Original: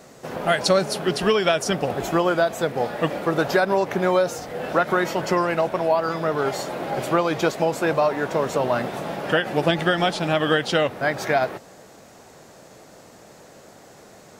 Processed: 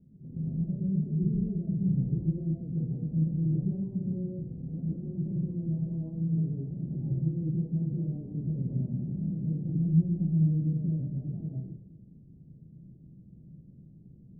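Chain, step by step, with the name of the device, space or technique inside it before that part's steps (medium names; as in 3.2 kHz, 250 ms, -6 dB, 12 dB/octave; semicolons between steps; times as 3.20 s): club heard from the street (peak limiter -15.5 dBFS, peak gain reduction 9.5 dB; low-pass 200 Hz 24 dB/octave; reverberation RT60 0.65 s, pre-delay 113 ms, DRR -3.5 dB); trim -1.5 dB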